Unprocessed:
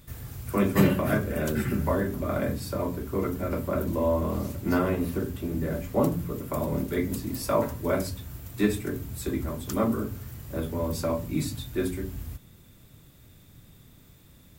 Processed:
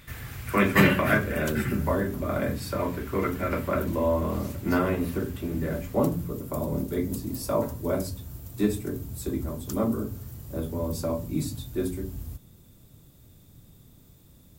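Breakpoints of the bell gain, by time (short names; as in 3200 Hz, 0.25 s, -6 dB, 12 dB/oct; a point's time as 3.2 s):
bell 2000 Hz 1.7 oct
1 s +12 dB
1.79 s +1 dB
2.33 s +1 dB
2.93 s +9.5 dB
3.64 s +9.5 dB
4.05 s +2.5 dB
5.68 s +2.5 dB
6.47 s -8 dB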